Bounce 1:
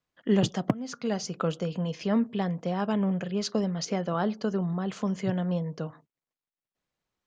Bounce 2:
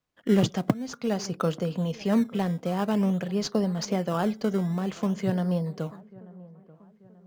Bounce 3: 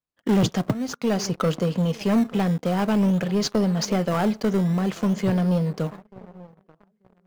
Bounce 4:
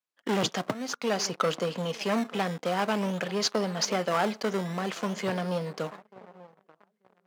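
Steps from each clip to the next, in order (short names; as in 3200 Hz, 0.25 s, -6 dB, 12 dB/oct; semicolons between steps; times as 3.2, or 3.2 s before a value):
in parallel at -11 dB: decimation with a swept rate 17×, swing 100% 0.5 Hz; on the sum: dark delay 0.886 s, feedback 44%, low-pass 1400 Hz, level -21 dB
sample leveller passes 3; gain -5 dB
weighting filter A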